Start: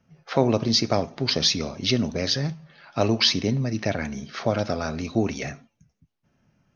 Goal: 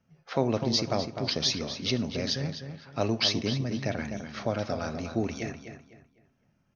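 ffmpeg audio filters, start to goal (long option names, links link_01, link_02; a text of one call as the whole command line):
ffmpeg -i in.wav -filter_complex "[0:a]asplit=2[link_01][link_02];[link_02]adelay=252,lowpass=frequency=3800:poles=1,volume=-8dB,asplit=2[link_03][link_04];[link_04]adelay=252,lowpass=frequency=3800:poles=1,volume=0.31,asplit=2[link_05][link_06];[link_06]adelay=252,lowpass=frequency=3800:poles=1,volume=0.31,asplit=2[link_07][link_08];[link_08]adelay=252,lowpass=frequency=3800:poles=1,volume=0.31[link_09];[link_01][link_03][link_05][link_07][link_09]amix=inputs=5:normalize=0,volume=-6dB" out.wav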